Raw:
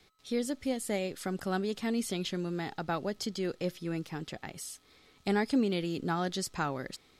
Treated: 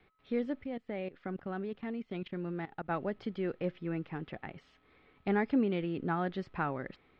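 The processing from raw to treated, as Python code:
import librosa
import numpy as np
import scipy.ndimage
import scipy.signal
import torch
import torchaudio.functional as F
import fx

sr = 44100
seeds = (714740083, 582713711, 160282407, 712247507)

y = fx.level_steps(x, sr, step_db=18, at=(0.62, 2.89), fade=0.02)
y = scipy.signal.sosfilt(scipy.signal.butter(4, 2600.0, 'lowpass', fs=sr, output='sos'), y)
y = y * 10.0 ** (-1.0 / 20.0)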